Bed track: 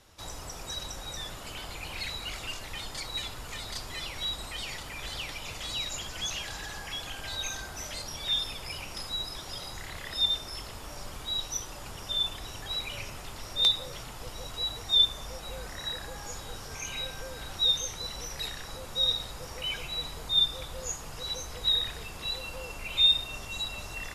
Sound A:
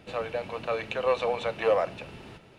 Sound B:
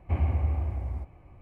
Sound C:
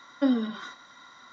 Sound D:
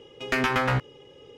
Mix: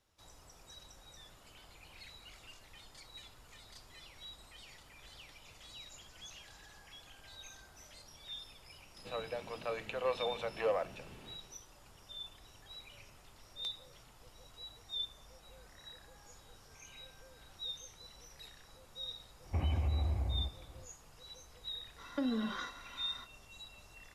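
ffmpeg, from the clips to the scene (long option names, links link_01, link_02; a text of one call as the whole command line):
ffmpeg -i bed.wav -i cue0.wav -i cue1.wav -i cue2.wav -filter_complex "[0:a]volume=-17.5dB[link_01];[2:a]acompressor=threshold=-26dB:ratio=6:attack=3.2:release=140:knee=1:detection=peak[link_02];[3:a]acompressor=threshold=-30dB:ratio=6:attack=3.2:release=140:knee=1:detection=peak[link_03];[1:a]atrim=end=2.58,asetpts=PTS-STARTPTS,volume=-9dB,afade=type=in:duration=0.004:curve=hsin,afade=type=out:start_time=2.576:duration=0.004:curve=hsin,adelay=396018S[link_04];[link_02]atrim=end=1.41,asetpts=PTS-STARTPTS,volume=-2.5dB,afade=type=in:duration=0.004:curve=hsin,afade=type=out:start_time=1.406:duration=0.004:curve=hsin,adelay=19440[link_05];[link_03]atrim=end=1.32,asetpts=PTS-STARTPTS,volume=-1dB,afade=type=in:duration=0.05,afade=type=out:start_time=1.27:duration=0.05,adelay=968436S[link_06];[link_01][link_04][link_05][link_06]amix=inputs=4:normalize=0" out.wav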